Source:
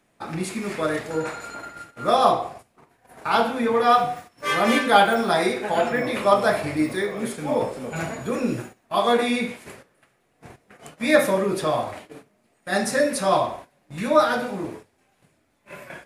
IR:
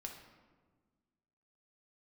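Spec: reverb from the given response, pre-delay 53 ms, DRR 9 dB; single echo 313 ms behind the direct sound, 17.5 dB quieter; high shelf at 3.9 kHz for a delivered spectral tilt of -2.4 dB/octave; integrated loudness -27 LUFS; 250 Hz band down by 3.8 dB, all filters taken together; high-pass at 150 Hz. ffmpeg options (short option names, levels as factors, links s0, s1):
-filter_complex "[0:a]highpass=150,equalizer=f=250:t=o:g=-4,highshelf=f=3900:g=9,aecho=1:1:313:0.133,asplit=2[s0][s1];[1:a]atrim=start_sample=2205,adelay=53[s2];[s1][s2]afir=irnorm=-1:irlink=0,volume=0.531[s3];[s0][s3]amix=inputs=2:normalize=0,volume=0.531"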